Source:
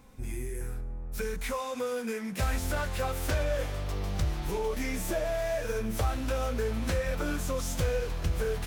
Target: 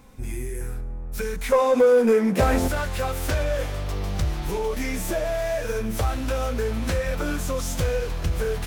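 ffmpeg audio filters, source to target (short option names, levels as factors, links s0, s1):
-filter_complex "[0:a]asettb=1/sr,asplit=3[s0][s1][s2];[s0]atrim=end=1.524[s3];[s1]atrim=start=1.52:end=2.68,asetpts=PTS-STARTPTS,afade=t=in:d=0.004:c=qsin,afade=t=out:st=1.156:d=0.004:c=qsin,equalizer=f=430:t=o:w=2.8:g=14.5[s4];[s2]atrim=start=2.676[s5];[s3][s4]acrossfade=d=0.004:c1=hsin:c2=qsin[s6];[s6][s5]acrossfade=d=0.004:c1=qsin:c2=hsin,asoftclip=type=tanh:threshold=0.178,volume=1.78"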